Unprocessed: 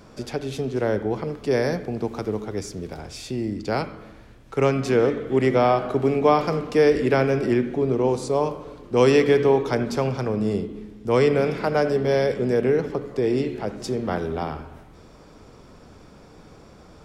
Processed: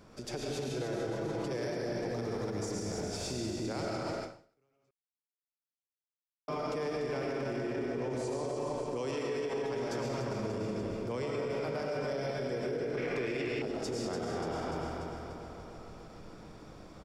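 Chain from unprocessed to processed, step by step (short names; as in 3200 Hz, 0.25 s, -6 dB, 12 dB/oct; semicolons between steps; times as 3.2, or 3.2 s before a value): digital reverb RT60 1.4 s, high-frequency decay 0.85×, pre-delay 70 ms, DRR -2.5 dB; compressor 3:1, threshold -22 dBFS, peak gain reduction 11.5 dB; feedback echo 0.293 s, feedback 59%, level -6 dB; dynamic EQ 6800 Hz, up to +6 dB, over -51 dBFS, Q 0.97; 0.69–1.57 comb 6.1 ms, depth 63%; limiter -18.5 dBFS, peak gain reduction 9.5 dB; 4.91–6.48 mute; 12.97–13.62 bell 2300 Hz +14 dB 0.98 oct; ending taper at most 130 dB/s; gain -8.5 dB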